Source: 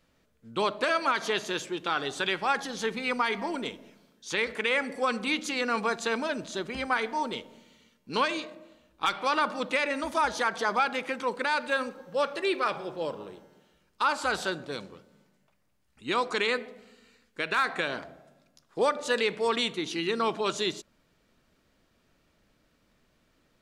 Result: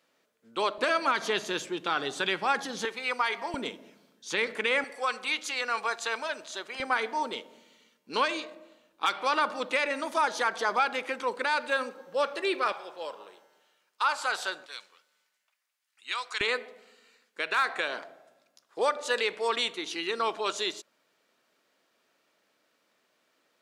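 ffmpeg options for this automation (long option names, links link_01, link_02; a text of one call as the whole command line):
ffmpeg -i in.wav -af "asetnsamples=nb_out_samples=441:pad=0,asendcmd='0.78 highpass f 150;2.85 highpass f 540;3.54 highpass f 190;4.84 highpass f 670;6.8 highpass f 310;12.72 highpass f 700;14.66 highpass f 1500;16.41 highpass f 440',highpass=370" out.wav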